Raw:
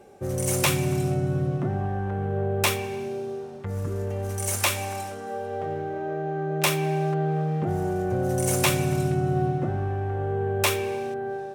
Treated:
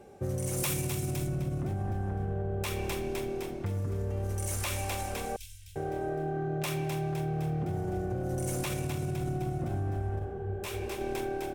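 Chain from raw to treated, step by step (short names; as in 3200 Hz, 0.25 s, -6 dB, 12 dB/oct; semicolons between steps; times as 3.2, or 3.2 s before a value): low shelf 190 Hz +6.5 dB; frequency-shifting echo 0.256 s, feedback 53%, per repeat -37 Hz, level -9 dB; limiter -15.5 dBFS, peak gain reduction 9 dB; compressor, threshold -26 dBFS, peak gain reduction 7 dB; 0.56–1.26 high shelf 7000 Hz -> 3900 Hz +10.5 dB; 5.36–5.76 inverse Chebyshev band-stop 240–880 Hz, stop band 70 dB; 10.19–11.01 detuned doubles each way 56 cents; gain -3 dB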